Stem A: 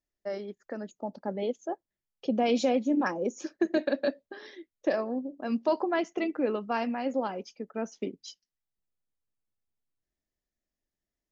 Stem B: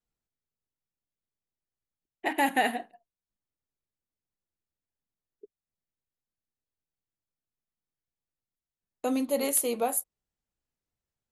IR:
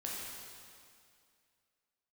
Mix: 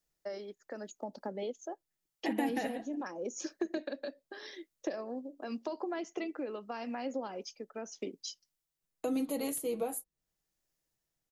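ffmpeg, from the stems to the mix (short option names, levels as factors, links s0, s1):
-filter_complex "[0:a]bass=f=250:g=-10,treble=f=4000:g=8,acompressor=threshold=0.0224:ratio=2,tremolo=f=0.84:d=0.46,volume=1.19[s0];[1:a]aecho=1:1:6.2:0.53,volume=0.944[s1];[s0][s1]amix=inputs=2:normalize=0,acrossover=split=370[s2][s3];[s3]acompressor=threshold=0.0112:ratio=4[s4];[s2][s4]amix=inputs=2:normalize=0"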